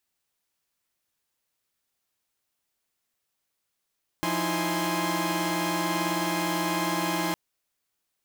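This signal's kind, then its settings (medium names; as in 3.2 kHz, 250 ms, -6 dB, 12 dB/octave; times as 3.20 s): chord F3/D#4/E4/G#5/C6 saw, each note -29.5 dBFS 3.11 s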